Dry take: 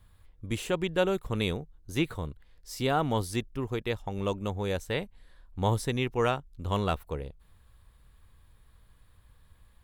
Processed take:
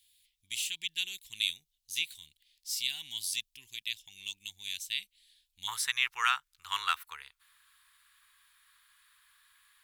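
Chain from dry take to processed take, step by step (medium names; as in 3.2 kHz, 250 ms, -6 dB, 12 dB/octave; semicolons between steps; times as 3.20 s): inverse Chebyshev high-pass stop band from 1.4 kHz, stop band 40 dB, from 5.67 s stop band from 630 Hz; trim +7 dB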